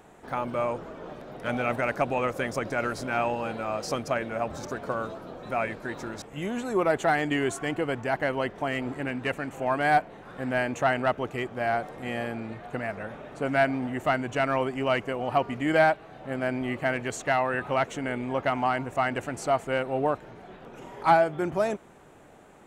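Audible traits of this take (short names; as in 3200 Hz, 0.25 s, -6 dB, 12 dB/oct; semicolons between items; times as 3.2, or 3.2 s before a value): noise floor -49 dBFS; spectral tilt -4.0 dB/oct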